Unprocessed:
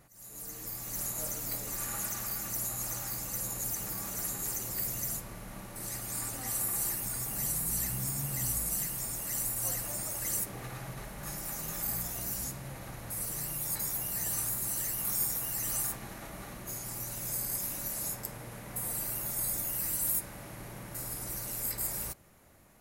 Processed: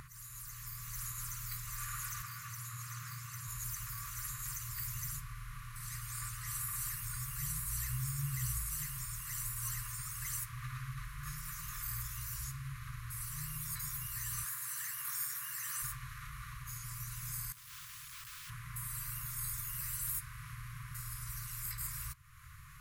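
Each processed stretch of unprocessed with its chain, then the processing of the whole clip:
2.22–3.48 s: high-pass 91 Hz 24 dB/octave + treble shelf 6.1 kHz -8 dB
14.44–15.82 s: high-pass 310 Hz + peaking EQ 1.7 kHz +5.5 dB 0.32 oct
17.52–18.50 s: high-pass 92 Hz + compressor with a negative ratio -45 dBFS + integer overflow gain 43 dB
whole clip: treble shelf 3.1 kHz -9 dB; FFT band-reject 160–1000 Hz; upward compressor, threshold -43 dBFS; trim +1 dB

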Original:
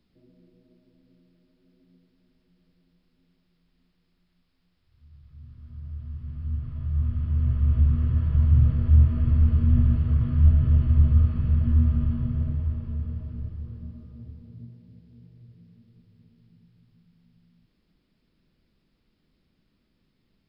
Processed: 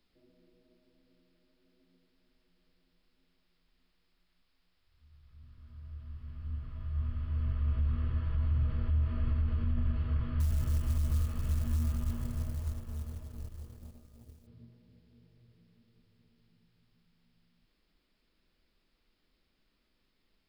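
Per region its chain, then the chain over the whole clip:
10.40–14.47 s: companding laws mixed up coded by A + tone controls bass +1 dB, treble +7 dB
whole clip: peaking EQ 140 Hz -14 dB 2.3 oct; peak limiter -23 dBFS

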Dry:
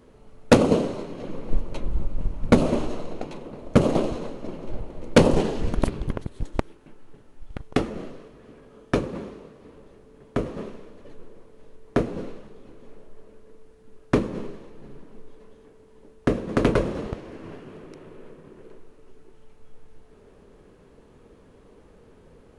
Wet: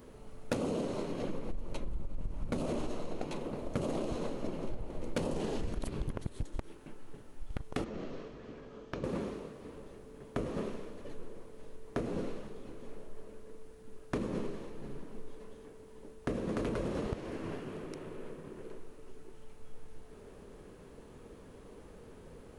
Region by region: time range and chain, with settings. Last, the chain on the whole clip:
7.84–9.04 s: low-pass 6.3 kHz 24 dB/octave + compression 5:1, threshold -36 dBFS
whole clip: peak limiter -18 dBFS; treble shelf 9.5 kHz +10.5 dB; compression, threshold -31 dBFS

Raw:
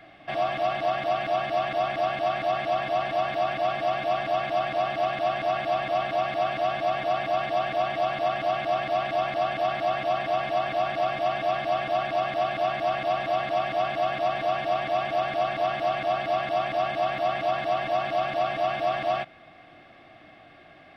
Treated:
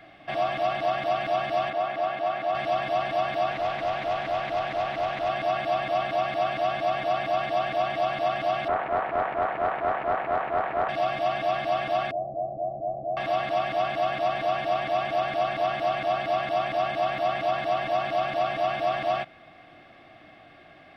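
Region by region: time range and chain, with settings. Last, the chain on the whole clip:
1.70–2.55 s: high-pass 300 Hz 6 dB/octave + treble shelf 3.5 kHz -11 dB
3.51–5.29 s: valve stage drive 19 dB, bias 0.3 + loudspeaker Doppler distortion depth 0.14 ms
8.68–10.89 s: low-pass 1.6 kHz 24 dB/octave + tilt shelf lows -5.5 dB, about 720 Hz + loudspeaker Doppler distortion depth 0.39 ms
12.11–13.17 s: steep low-pass 700 Hz 48 dB/octave + peaking EQ 270 Hz -6.5 dB 1.5 oct
whole clip: none

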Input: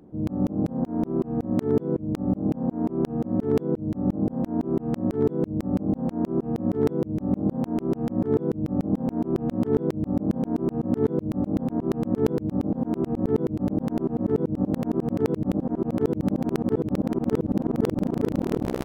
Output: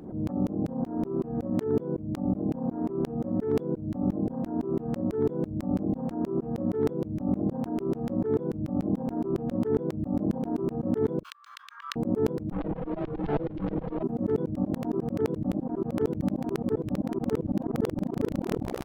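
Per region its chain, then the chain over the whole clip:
11.23–11.96 s: rippled Chebyshev high-pass 1.1 kHz, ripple 3 dB + peaking EQ 3.2 kHz +13 dB 2 oct
12.52–14.03 s: comb filter that takes the minimum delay 6.2 ms + low-pass 3.8 kHz 24 dB/octave
whole clip: reverb removal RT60 1.4 s; swell ahead of each attack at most 82 dB/s; trim -3 dB

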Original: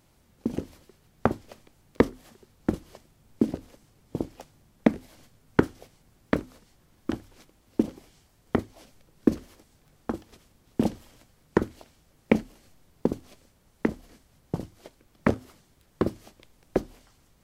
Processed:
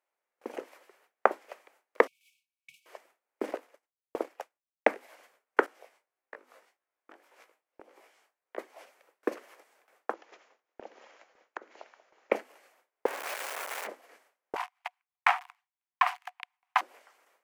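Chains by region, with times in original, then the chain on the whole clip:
2.07–2.86 s: comb filter that takes the minimum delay 3.1 ms + brick-wall FIR band-stop 180–2200 Hz + treble shelf 2.7 kHz -5.5 dB
3.44–4.94 s: expander -48 dBFS + waveshaping leveller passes 1
5.66–8.58 s: compression 4:1, threshold -42 dBFS + chorus 1.7 Hz, delay 17 ms, depth 4 ms
10.13–12.32 s: brick-wall FIR low-pass 7.3 kHz + compression 5:1, threshold -38 dBFS + echo whose repeats swap between lows and highs 185 ms, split 830 Hz, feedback 55%, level -13.5 dB
13.06–13.87 s: one-bit comparator + bass shelf 340 Hz -9.5 dB
14.56–16.81 s: waveshaping leveller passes 5 + rippled Chebyshev high-pass 710 Hz, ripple 6 dB + treble shelf 4.7 kHz -7.5 dB
whole clip: high-pass 490 Hz 24 dB/octave; gate with hold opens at -54 dBFS; resonant high shelf 2.9 kHz -8 dB, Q 1.5; trim +3 dB

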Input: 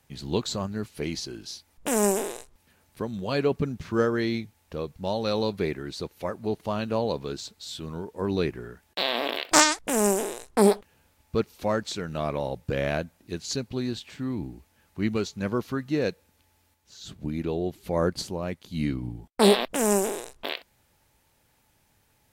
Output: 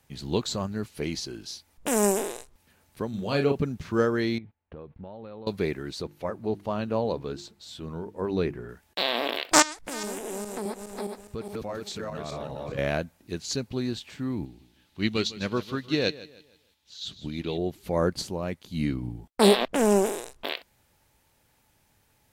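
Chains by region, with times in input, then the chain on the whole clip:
3.09–3.62 s: band-stop 1 kHz, Q 17 + doubling 36 ms -6 dB
4.38–5.47 s: gate -53 dBFS, range -16 dB + compression 12:1, threshold -37 dBFS + Gaussian low-pass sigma 3.3 samples
6.02–8.69 s: treble shelf 2.6 kHz -8 dB + hum notches 50/100/150/200/250/300/350 Hz
9.62–12.78 s: backward echo that repeats 207 ms, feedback 44%, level 0 dB + compression 3:1, threshold -34 dBFS
14.45–17.58 s: peaking EQ 3.6 kHz +14 dB 1.1 oct + feedback delay 155 ms, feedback 35%, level -12.5 dB + upward expansion, over -34 dBFS
19.61–20.06 s: low-pass 3.2 kHz 6 dB/octave + waveshaping leveller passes 1
whole clip: none

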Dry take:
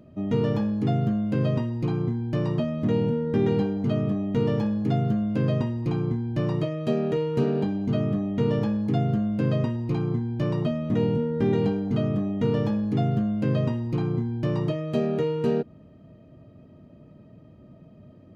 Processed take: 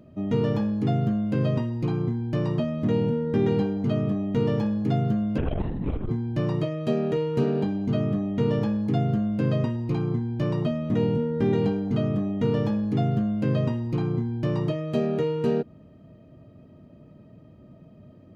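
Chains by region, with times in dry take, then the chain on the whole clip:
5.38–6.09 s: LPC vocoder at 8 kHz whisper + transformer saturation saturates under 91 Hz
whole clip: none

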